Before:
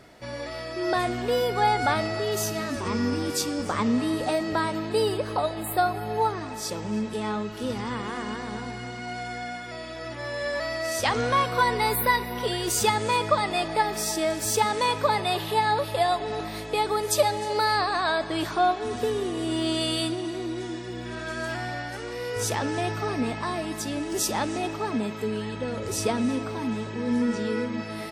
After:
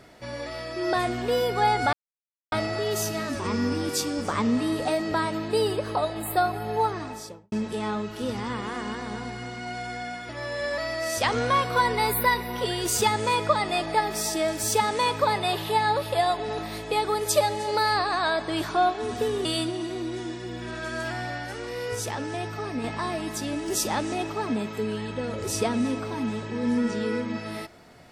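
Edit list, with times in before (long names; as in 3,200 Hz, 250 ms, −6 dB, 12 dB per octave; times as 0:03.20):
0:01.93: splice in silence 0.59 s
0:06.44–0:06.93: fade out and dull
0:09.70–0:10.11: remove
0:19.27–0:19.89: remove
0:22.39–0:23.28: clip gain −4 dB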